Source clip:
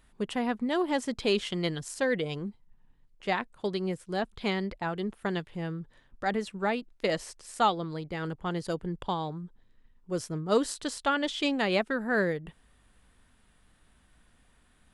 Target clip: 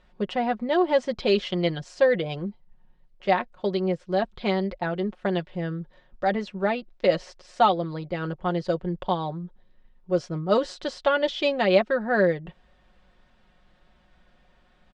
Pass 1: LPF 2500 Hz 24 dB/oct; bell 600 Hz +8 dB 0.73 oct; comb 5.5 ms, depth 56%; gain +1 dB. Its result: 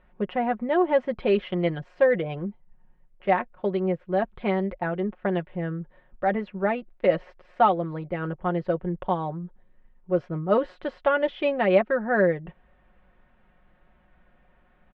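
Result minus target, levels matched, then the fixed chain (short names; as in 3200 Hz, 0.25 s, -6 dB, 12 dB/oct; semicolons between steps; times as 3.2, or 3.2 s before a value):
4000 Hz band -9.5 dB
LPF 5400 Hz 24 dB/oct; bell 600 Hz +8 dB 0.73 oct; comb 5.5 ms, depth 56%; gain +1 dB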